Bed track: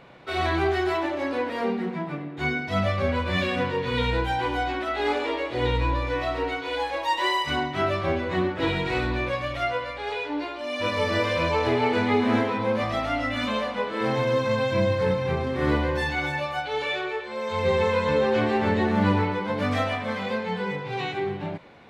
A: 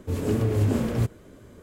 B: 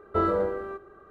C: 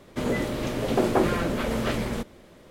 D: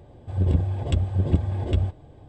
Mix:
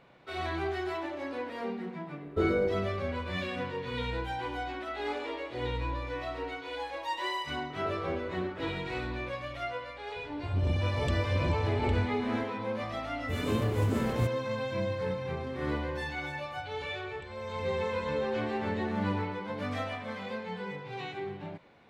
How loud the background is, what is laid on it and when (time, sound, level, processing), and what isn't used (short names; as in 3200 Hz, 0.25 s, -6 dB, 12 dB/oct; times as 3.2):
bed track -9.5 dB
2.22 add B -0.5 dB + band shelf 1300 Hz -12 dB 2.3 oct
7.7 add B -16.5 dB + per-bin compression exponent 0.4
10.16 add D -3.5 dB + soft clip -20.5 dBFS
13.21 add A -5.5 dB + G.711 law mismatch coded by A
16.3 add D -11.5 dB + compressor 10:1, threshold -35 dBFS
not used: C